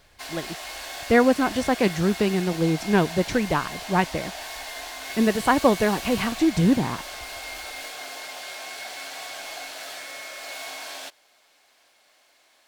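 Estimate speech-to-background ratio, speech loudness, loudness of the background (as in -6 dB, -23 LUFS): 12.0 dB, -22.5 LUFS, -34.5 LUFS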